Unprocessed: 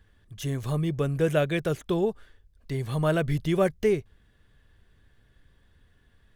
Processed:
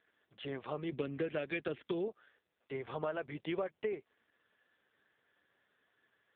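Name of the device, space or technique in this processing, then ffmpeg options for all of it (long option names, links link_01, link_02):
voicemail: -filter_complex "[0:a]asettb=1/sr,asplit=3[link_01][link_02][link_03];[link_01]atrim=end=0.924[link_04];[link_02]atrim=start=0.92:end=2.08,asetpts=PTS-STARTPTS,afade=type=in:duration=0.004:curve=qsin,afade=type=out:start_time=1.156:duration=0.004:curve=qsin,equalizer=frequency=125:width_type=o:width=1:gain=6,equalizer=frequency=250:width_type=o:width=1:gain=10,equalizer=frequency=1000:width_type=o:width=1:gain=-6,equalizer=frequency=2000:width_type=o:width=1:gain=5,equalizer=frequency=4000:width_type=o:width=1:gain=7,equalizer=frequency=8000:width_type=o:width=1:gain=5[link_05];[link_03]atrim=start=2.076[link_06];[link_04][link_05]acrossfade=duration=0.004:curve1=hsin:curve2=qsin[link_07];[link_07][link_06]acrossfade=duration=0.004:curve1=qsin:curve2=hsin,highpass=440,lowpass=3200,acompressor=threshold=-32dB:ratio=12" -ar 8000 -c:a libopencore_amrnb -b:a 5900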